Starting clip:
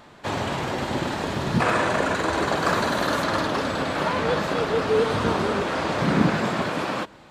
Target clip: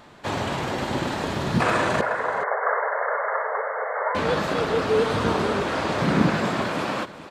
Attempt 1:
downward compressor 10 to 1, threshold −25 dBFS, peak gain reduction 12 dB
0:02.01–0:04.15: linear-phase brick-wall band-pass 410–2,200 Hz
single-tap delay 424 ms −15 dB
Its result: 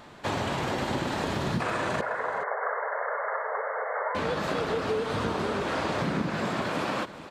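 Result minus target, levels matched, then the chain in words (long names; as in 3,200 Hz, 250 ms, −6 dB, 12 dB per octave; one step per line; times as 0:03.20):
downward compressor: peak gain reduction +12 dB
0:02.01–0:04.15: linear-phase brick-wall band-pass 410–2,200 Hz
single-tap delay 424 ms −15 dB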